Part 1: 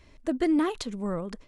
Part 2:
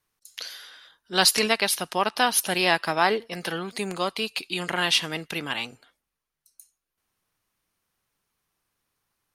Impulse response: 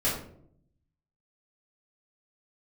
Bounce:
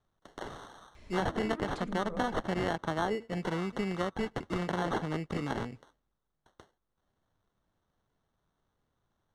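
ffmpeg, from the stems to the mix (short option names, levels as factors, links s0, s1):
-filter_complex "[0:a]acompressor=threshold=0.0251:ratio=2.5,adelay=950,volume=0.944,asplit=2[s0][s1];[s1]volume=0.133[s2];[1:a]lowshelf=f=310:g=11.5,acrusher=samples=18:mix=1:aa=0.000001,lowpass=7300,volume=0.631,asplit=2[s3][s4];[s4]apad=whole_len=106860[s5];[s0][s5]sidechaincompress=threshold=0.0398:ratio=8:attack=16:release=158[s6];[2:a]atrim=start_sample=2205[s7];[s2][s7]afir=irnorm=-1:irlink=0[s8];[s6][s3][s8]amix=inputs=3:normalize=0,acrossover=split=900|2900[s9][s10][s11];[s9]acompressor=threshold=0.0316:ratio=4[s12];[s10]acompressor=threshold=0.0141:ratio=4[s13];[s11]acompressor=threshold=0.002:ratio=4[s14];[s12][s13][s14]amix=inputs=3:normalize=0"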